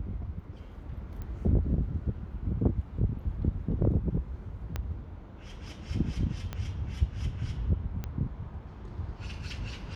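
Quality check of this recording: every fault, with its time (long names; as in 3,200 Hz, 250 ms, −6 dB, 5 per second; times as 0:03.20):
0:01.22: click −28 dBFS
0:04.76: click −19 dBFS
0:06.53: click −21 dBFS
0:08.04: click −22 dBFS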